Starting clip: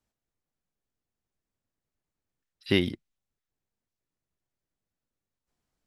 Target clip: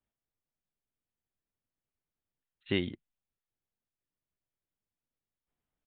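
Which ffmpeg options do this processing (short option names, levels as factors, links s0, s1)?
-af "aresample=8000,aresample=44100,volume=0.473"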